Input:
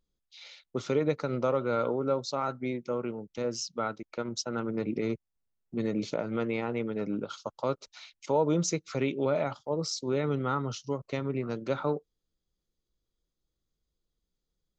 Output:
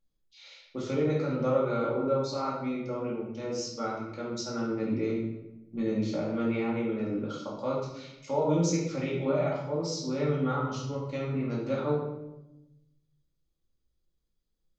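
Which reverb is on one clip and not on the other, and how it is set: shoebox room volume 340 m³, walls mixed, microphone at 2.3 m; gain -7.5 dB

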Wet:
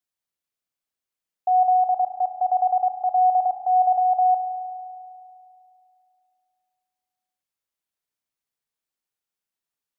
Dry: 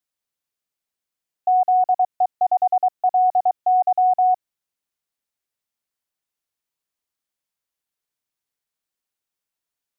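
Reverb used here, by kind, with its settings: spring tank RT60 2.6 s, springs 35 ms, chirp 45 ms, DRR 6.5 dB; gain -3.5 dB

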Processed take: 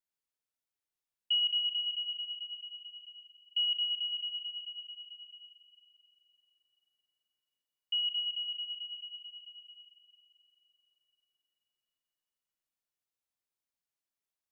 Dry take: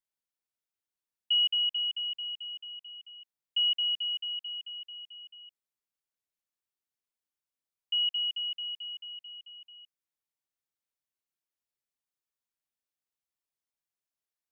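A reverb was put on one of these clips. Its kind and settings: digital reverb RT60 3.8 s, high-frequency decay 0.95×, pre-delay 5 ms, DRR 5.5 dB; gain -2.5 dB

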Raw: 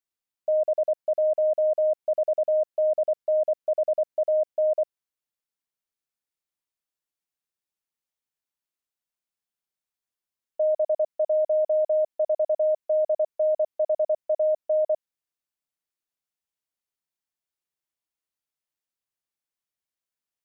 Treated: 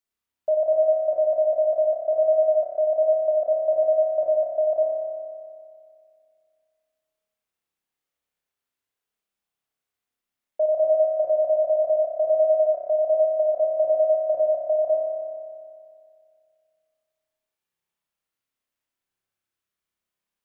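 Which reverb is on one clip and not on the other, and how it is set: spring tank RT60 2.2 s, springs 30 ms, chirp 60 ms, DRR -3.5 dB; gain +1.5 dB

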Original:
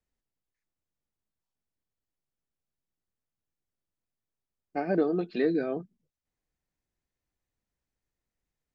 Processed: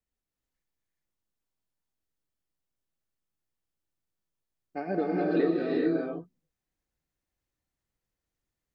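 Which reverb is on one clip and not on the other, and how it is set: non-linear reverb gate 0.45 s rising, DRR -3 dB; gain -4 dB

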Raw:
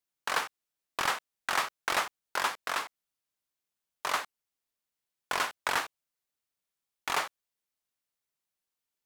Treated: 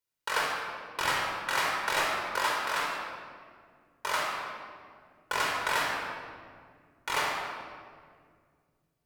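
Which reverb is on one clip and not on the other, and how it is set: shoebox room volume 3600 m³, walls mixed, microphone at 4.7 m; gain -3.5 dB

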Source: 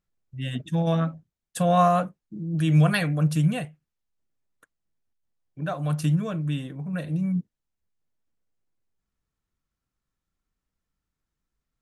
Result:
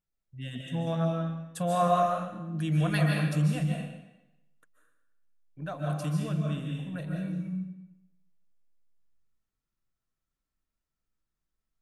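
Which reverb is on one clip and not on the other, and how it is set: digital reverb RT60 0.94 s, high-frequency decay 0.95×, pre-delay 0.105 s, DRR -0.5 dB; gain -7.5 dB

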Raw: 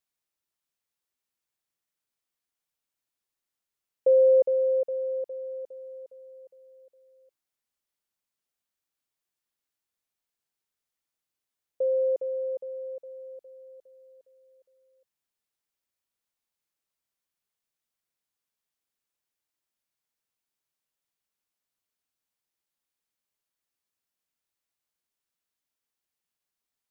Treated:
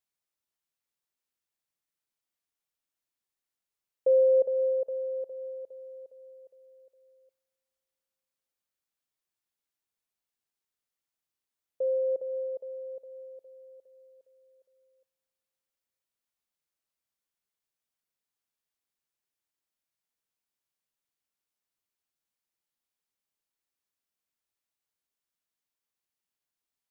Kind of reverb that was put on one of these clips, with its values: spring tank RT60 3.4 s, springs 34 ms, chirp 25 ms, DRR 15.5 dB; gain -3 dB

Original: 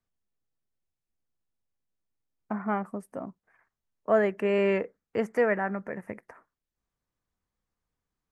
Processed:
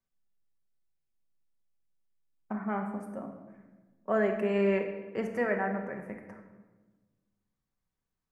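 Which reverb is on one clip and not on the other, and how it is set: shoebox room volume 910 m³, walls mixed, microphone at 1.1 m; gain -5 dB

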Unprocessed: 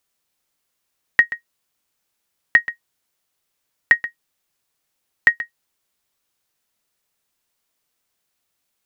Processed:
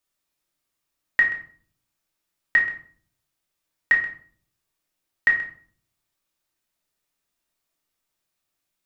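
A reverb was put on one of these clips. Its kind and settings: shoebox room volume 530 m³, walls furnished, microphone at 2.7 m; gain -8.5 dB

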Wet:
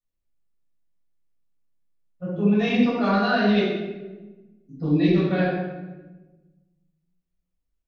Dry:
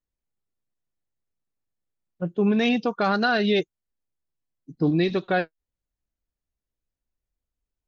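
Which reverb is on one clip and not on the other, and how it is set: shoebox room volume 680 m³, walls mixed, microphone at 6.6 m; gain -13 dB

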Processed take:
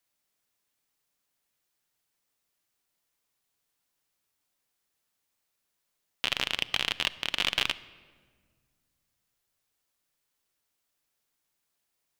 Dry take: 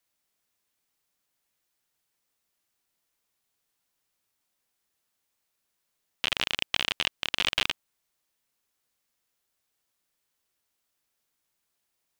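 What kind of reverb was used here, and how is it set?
shoebox room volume 2100 m³, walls mixed, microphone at 0.34 m; gain -1 dB

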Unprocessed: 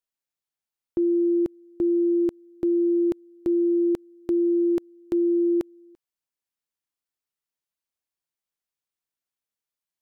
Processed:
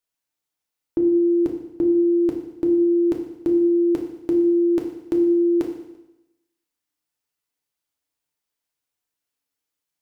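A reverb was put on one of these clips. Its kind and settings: FDN reverb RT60 0.9 s, low-frequency decay 1×, high-frequency decay 1×, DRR 1 dB; gain +3.5 dB

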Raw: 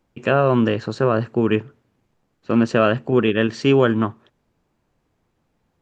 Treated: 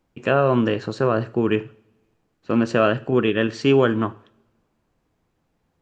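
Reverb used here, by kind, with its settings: two-slope reverb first 0.45 s, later 1.6 s, from -24 dB, DRR 14 dB; gain -1.5 dB

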